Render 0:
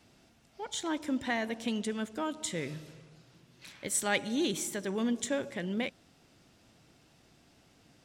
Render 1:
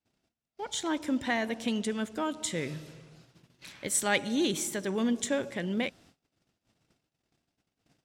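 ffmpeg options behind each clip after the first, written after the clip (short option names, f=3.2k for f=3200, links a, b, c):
-af "agate=range=-31dB:threshold=-59dB:ratio=16:detection=peak,volume=2.5dB"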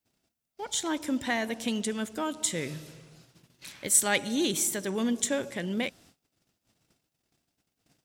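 -af "highshelf=f=6.9k:g=11"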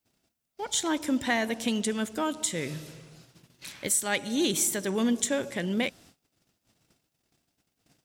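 -af "alimiter=limit=-17dB:level=0:latency=1:release=349,volume=2.5dB"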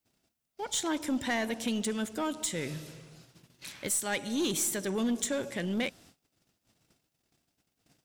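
-af "aeval=exprs='(tanh(12.6*val(0)+0.1)-tanh(0.1))/12.6':c=same,volume=-1.5dB"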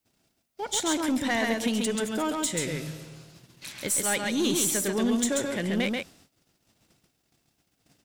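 -af "aecho=1:1:135:0.708,volume=3.5dB"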